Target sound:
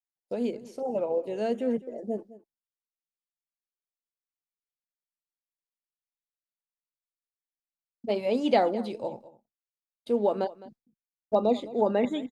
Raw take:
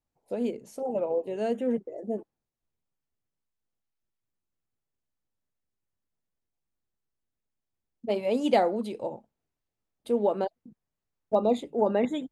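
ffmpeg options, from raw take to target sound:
-filter_complex "[0:a]agate=range=0.0224:threshold=0.00398:ratio=3:detection=peak,acrossover=split=4500[s0][s1];[s1]acompressor=threshold=0.00112:ratio=4:attack=1:release=60[s2];[s0][s2]amix=inputs=2:normalize=0,equalizer=f=4900:t=o:w=0.76:g=7,asplit=2[s3][s4];[s4]aecho=0:1:210:0.119[s5];[s3][s5]amix=inputs=2:normalize=0"

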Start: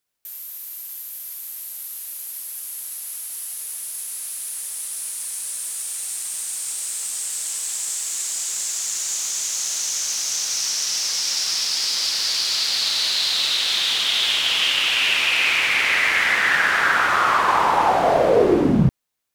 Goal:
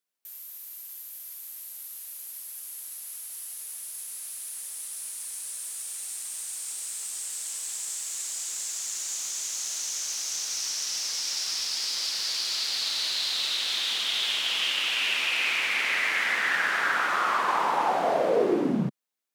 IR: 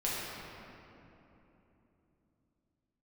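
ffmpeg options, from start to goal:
-af "highpass=f=170:w=0.5412,highpass=f=170:w=1.3066,volume=0.422"

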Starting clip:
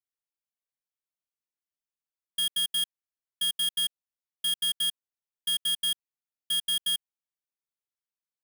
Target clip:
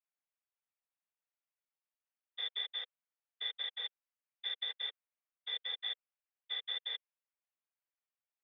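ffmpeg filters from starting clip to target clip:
-af "afftfilt=real='hypot(re,im)*cos(2*PI*random(0))':imag='hypot(re,im)*sin(2*PI*random(1))':win_size=512:overlap=0.75,highpass=f=240:t=q:w=0.5412,highpass=f=240:t=q:w=1.307,lowpass=f=2700:t=q:w=0.5176,lowpass=f=2700:t=q:w=0.7071,lowpass=f=2700:t=q:w=1.932,afreqshift=250,volume=1.88"

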